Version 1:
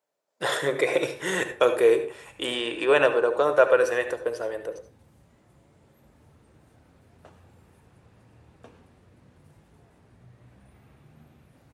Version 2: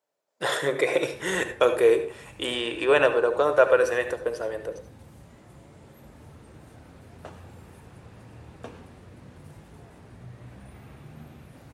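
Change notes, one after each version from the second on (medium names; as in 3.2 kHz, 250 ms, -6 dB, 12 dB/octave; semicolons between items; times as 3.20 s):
background +9.0 dB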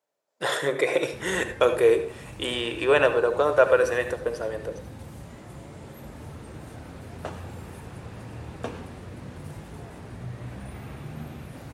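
background +7.5 dB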